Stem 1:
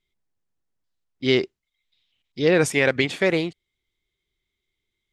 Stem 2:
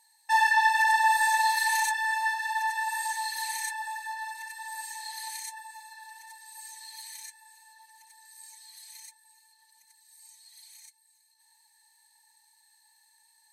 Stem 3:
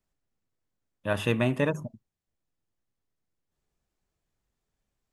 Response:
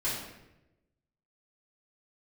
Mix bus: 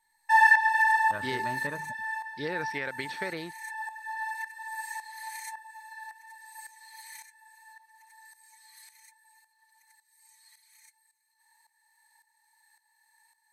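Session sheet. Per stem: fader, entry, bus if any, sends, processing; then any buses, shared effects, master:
-3.0 dB, 0.00 s, bus A, no send, none
-5.5 dB, 0.00 s, no bus, no send, high-order bell 1.4 kHz +12 dB; tremolo saw up 1.8 Hz, depth 75%; auto duck -10 dB, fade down 0.45 s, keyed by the first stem
-4.0 dB, 0.05 s, bus A, no send, none
bus A: 0.0 dB, rippled Chebyshev low-pass 5.8 kHz, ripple 9 dB; compression 5:1, threshold -31 dBFS, peak gain reduction 8.5 dB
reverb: none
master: treble shelf 10 kHz +6 dB

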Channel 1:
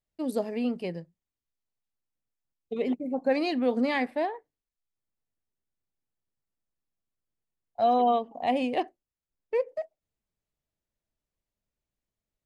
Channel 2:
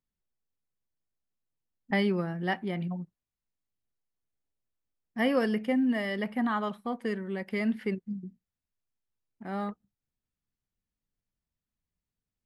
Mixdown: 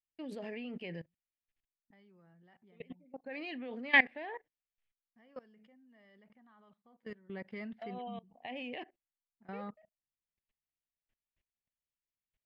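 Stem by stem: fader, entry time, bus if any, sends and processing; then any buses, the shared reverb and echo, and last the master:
+0.5 dB, 0.00 s, no send, high-order bell 2.3 kHz +10.5 dB 1.2 oct; auto duck -18 dB, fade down 0.25 s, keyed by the second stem
6.84 s -17.5 dB -> 7.38 s -5 dB, 0.00 s, no send, peaking EQ 300 Hz -3.5 dB 0.57 oct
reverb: none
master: low-pass 4.6 kHz 12 dB/octave; level held to a coarse grid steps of 21 dB

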